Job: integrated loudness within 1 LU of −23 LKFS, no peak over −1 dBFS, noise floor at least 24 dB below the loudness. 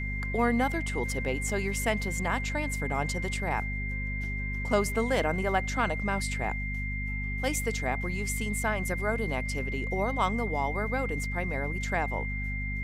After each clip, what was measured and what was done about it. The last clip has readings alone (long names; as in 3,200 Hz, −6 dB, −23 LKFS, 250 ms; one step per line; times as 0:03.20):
mains hum 50 Hz; hum harmonics up to 250 Hz; level of the hum −31 dBFS; interfering tone 2,100 Hz; level of the tone −35 dBFS; integrated loudness −30.0 LKFS; sample peak −12.5 dBFS; target loudness −23.0 LKFS
→ hum removal 50 Hz, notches 5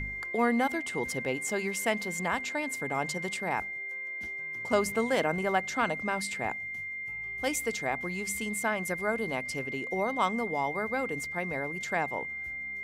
mains hum none found; interfering tone 2,100 Hz; level of the tone −35 dBFS
→ notch filter 2,100 Hz, Q 30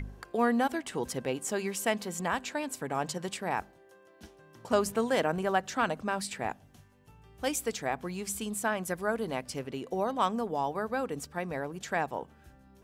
interfering tone none found; integrated loudness −32.0 LKFS; sample peak −13.0 dBFS; target loudness −23.0 LKFS
→ level +9 dB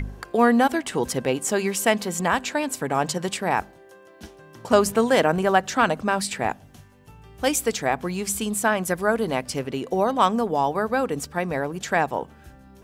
integrated loudness −23.0 LKFS; sample peak −4.0 dBFS; background noise floor −50 dBFS